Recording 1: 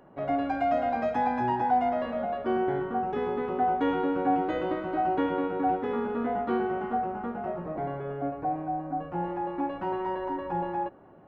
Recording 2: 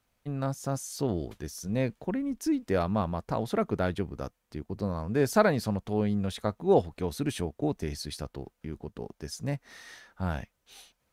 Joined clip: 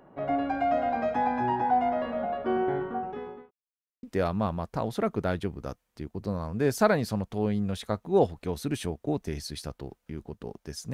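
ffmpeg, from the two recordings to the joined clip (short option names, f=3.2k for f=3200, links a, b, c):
-filter_complex "[0:a]apad=whole_dur=10.93,atrim=end=10.93,asplit=2[a][b];[a]atrim=end=3.51,asetpts=PTS-STARTPTS,afade=t=out:st=2.74:d=0.77[c];[b]atrim=start=3.51:end=4.03,asetpts=PTS-STARTPTS,volume=0[d];[1:a]atrim=start=2.58:end=9.48,asetpts=PTS-STARTPTS,afade=t=in:d=0.004:c=hsin[e];[c][d][e]concat=n=3:v=0:a=1"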